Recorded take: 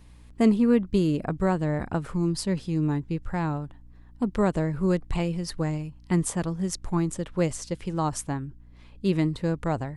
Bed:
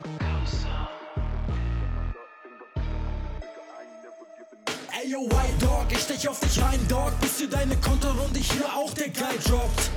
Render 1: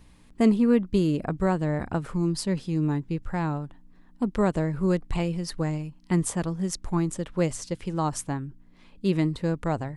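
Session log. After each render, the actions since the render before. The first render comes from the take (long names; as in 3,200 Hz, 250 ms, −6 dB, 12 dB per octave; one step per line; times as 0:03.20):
hum removal 60 Hz, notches 2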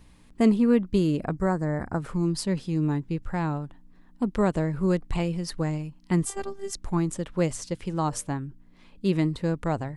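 0:01.35–0:02.00: Chebyshev band-stop filter 1,900–5,100 Hz
0:06.25–0:06.75: phases set to zero 393 Hz
0:07.90–0:08.31: hum removal 116.8 Hz, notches 5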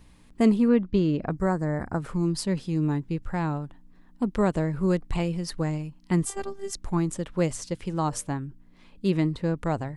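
0:00.68–0:01.31: Bessel low-pass filter 4,100 Hz, order 8
0:09.09–0:09.56: low-pass filter 8,100 Hz → 3,700 Hz 6 dB per octave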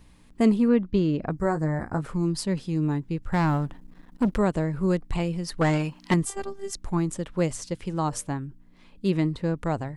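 0:01.37–0:02.02: double-tracking delay 19 ms −8 dB
0:03.32–0:04.38: leveller curve on the samples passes 2
0:05.61–0:06.14: mid-hump overdrive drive 24 dB, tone 3,800 Hz, clips at −11.5 dBFS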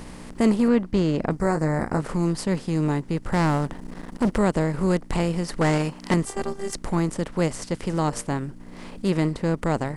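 compressor on every frequency bin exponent 0.6
transient designer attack −2 dB, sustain −6 dB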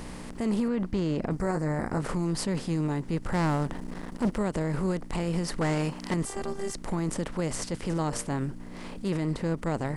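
transient designer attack −7 dB, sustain +2 dB
brickwall limiter −20 dBFS, peak gain reduction 10 dB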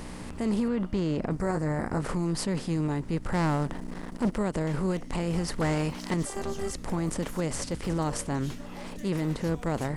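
mix in bed −20 dB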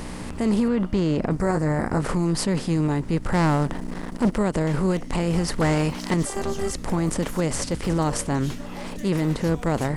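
level +6 dB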